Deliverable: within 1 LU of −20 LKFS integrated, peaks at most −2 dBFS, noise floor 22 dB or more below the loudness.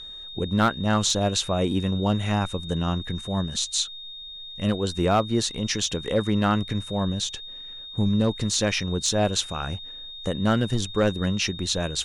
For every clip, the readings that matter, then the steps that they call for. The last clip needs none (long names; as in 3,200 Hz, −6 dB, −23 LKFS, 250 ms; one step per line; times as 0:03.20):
share of clipped samples 0.3%; peaks flattened at −13.0 dBFS; interfering tone 3,700 Hz; level of the tone −37 dBFS; integrated loudness −25.0 LKFS; sample peak −13.0 dBFS; target loudness −20.0 LKFS
→ clipped peaks rebuilt −13 dBFS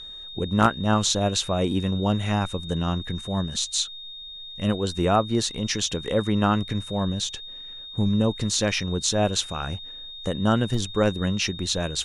share of clipped samples 0.0%; interfering tone 3,700 Hz; level of the tone −37 dBFS
→ notch filter 3,700 Hz, Q 30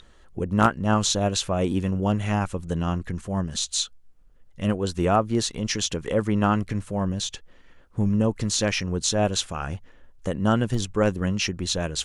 interfering tone none found; integrated loudness −25.0 LKFS; sample peak −4.0 dBFS; target loudness −20.0 LKFS
→ level +5 dB
brickwall limiter −2 dBFS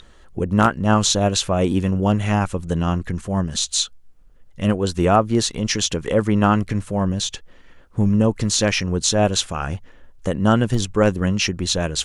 integrated loudness −20.0 LKFS; sample peak −2.0 dBFS; background noise floor −47 dBFS